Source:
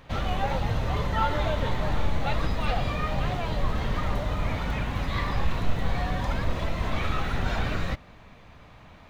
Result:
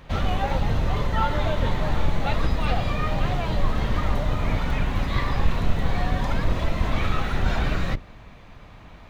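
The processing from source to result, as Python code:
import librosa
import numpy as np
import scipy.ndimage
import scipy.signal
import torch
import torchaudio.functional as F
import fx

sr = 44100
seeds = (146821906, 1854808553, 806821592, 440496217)

p1 = fx.octave_divider(x, sr, octaves=2, level_db=2.0)
p2 = fx.rider(p1, sr, range_db=10, speed_s=0.5)
p3 = p1 + (p2 * 10.0 ** (0.0 / 20.0))
y = p3 * 10.0 ** (-4.0 / 20.0)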